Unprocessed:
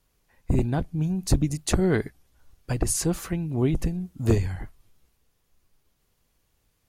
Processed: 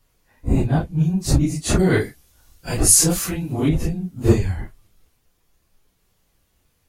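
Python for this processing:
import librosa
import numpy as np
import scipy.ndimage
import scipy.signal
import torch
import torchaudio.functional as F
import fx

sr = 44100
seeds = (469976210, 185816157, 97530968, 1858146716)

y = fx.phase_scramble(x, sr, seeds[0], window_ms=100)
y = fx.high_shelf(y, sr, hz=2900.0, db=10.0, at=(1.79, 3.69))
y = F.gain(torch.from_numpy(y), 5.0).numpy()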